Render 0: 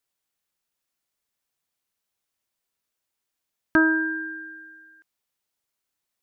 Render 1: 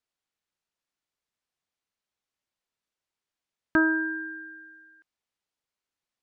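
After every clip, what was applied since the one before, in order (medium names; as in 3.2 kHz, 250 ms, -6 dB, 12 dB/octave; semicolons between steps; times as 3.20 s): distance through air 63 m; trim -3 dB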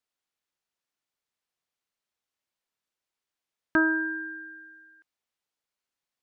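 bass shelf 220 Hz -4.5 dB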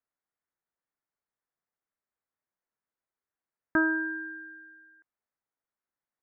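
steep low-pass 2 kHz; trim -2 dB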